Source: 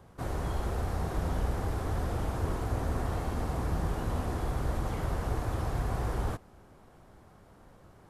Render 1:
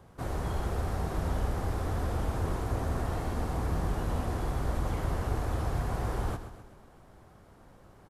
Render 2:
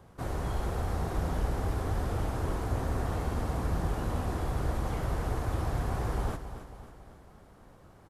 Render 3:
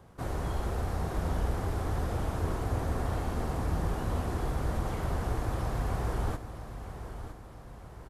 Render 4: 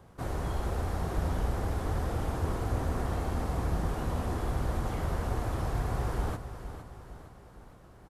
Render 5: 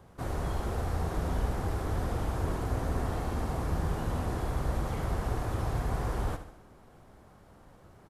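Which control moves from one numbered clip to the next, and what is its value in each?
feedback delay, time: 129 ms, 274 ms, 961 ms, 461 ms, 73 ms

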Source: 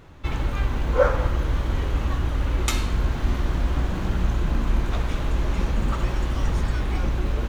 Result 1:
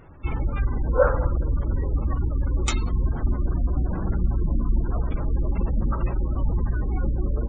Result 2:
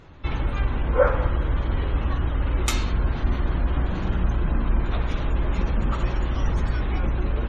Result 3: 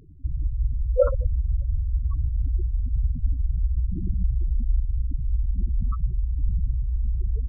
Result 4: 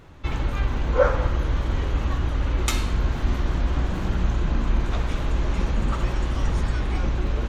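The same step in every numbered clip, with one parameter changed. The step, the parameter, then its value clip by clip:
spectral gate, under each frame's peak: -25 dB, -40 dB, -10 dB, -55 dB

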